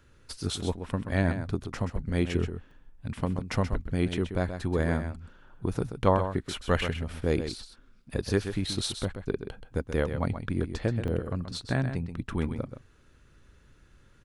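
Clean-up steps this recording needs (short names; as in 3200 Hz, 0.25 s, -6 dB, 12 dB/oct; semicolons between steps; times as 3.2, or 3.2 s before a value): interpolate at 2.71/11.08, 3.4 ms; inverse comb 0.129 s -9 dB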